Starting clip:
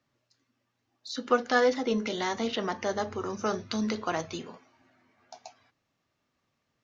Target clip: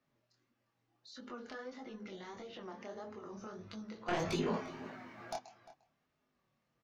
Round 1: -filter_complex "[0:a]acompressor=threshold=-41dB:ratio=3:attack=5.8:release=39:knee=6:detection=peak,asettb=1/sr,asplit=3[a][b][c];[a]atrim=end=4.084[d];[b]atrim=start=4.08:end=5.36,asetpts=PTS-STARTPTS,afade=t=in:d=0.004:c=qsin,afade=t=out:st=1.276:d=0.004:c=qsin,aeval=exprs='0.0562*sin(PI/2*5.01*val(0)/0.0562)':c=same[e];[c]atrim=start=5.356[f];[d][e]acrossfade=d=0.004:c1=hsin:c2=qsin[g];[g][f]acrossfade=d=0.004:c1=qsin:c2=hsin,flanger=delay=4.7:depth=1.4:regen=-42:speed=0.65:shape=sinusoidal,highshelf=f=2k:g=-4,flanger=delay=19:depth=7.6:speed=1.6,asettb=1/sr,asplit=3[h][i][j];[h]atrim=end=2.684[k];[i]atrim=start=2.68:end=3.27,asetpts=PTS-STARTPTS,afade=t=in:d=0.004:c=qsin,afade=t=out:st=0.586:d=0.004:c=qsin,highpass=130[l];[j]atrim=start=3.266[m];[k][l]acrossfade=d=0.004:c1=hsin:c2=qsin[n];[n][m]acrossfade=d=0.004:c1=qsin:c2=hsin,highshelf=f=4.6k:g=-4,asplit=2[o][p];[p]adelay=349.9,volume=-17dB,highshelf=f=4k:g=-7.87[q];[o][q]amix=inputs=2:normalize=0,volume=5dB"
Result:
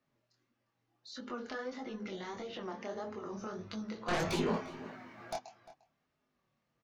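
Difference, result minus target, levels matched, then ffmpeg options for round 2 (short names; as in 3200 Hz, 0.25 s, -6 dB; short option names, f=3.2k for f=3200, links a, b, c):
compressor: peak gain reduction -5.5 dB
-filter_complex "[0:a]acompressor=threshold=-49.5dB:ratio=3:attack=5.8:release=39:knee=6:detection=peak,asettb=1/sr,asplit=3[a][b][c];[a]atrim=end=4.084[d];[b]atrim=start=4.08:end=5.36,asetpts=PTS-STARTPTS,afade=t=in:d=0.004:c=qsin,afade=t=out:st=1.276:d=0.004:c=qsin,aeval=exprs='0.0562*sin(PI/2*5.01*val(0)/0.0562)':c=same[e];[c]atrim=start=5.356[f];[d][e]acrossfade=d=0.004:c1=hsin:c2=qsin[g];[g][f]acrossfade=d=0.004:c1=qsin:c2=hsin,flanger=delay=4.7:depth=1.4:regen=-42:speed=0.65:shape=sinusoidal,highshelf=f=2k:g=-4,flanger=delay=19:depth=7.6:speed=1.6,asettb=1/sr,asplit=3[h][i][j];[h]atrim=end=2.684[k];[i]atrim=start=2.68:end=3.27,asetpts=PTS-STARTPTS,afade=t=in:d=0.004:c=qsin,afade=t=out:st=0.586:d=0.004:c=qsin,highpass=130[l];[j]atrim=start=3.266[m];[k][l]acrossfade=d=0.004:c1=hsin:c2=qsin[n];[n][m]acrossfade=d=0.004:c1=qsin:c2=hsin,highshelf=f=4.6k:g=-4,asplit=2[o][p];[p]adelay=349.9,volume=-17dB,highshelf=f=4k:g=-7.87[q];[o][q]amix=inputs=2:normalize=0,volume=5dB"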